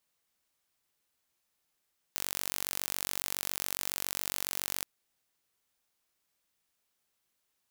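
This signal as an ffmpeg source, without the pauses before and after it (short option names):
-f lavfi -i "aevalsrc='0.473*eq(mod(n,934),0)':d=2.68:s=44100"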